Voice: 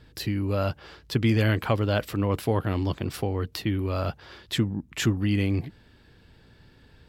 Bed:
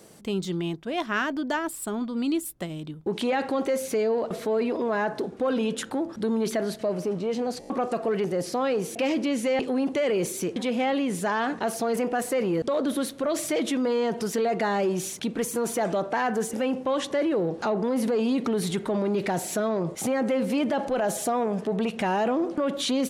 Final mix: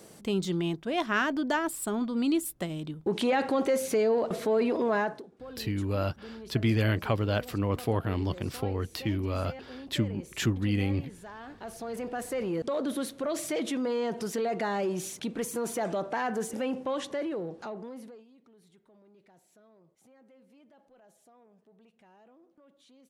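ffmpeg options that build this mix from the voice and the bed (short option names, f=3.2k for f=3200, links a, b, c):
-filter_complex "[0:a]adelay=5400,volume=-3.5dB[a];[1:a]volume=13.5dB,afade=t=out:st=4.97:d=0.26:silence=0.11885,afade=t=in:st=11.43:d=1.21:silence=0.199526,afade=t=out:st=16.79:d=1.46:silence=0.0334965[b];[a][b]amix=inputs=2:normalize=0"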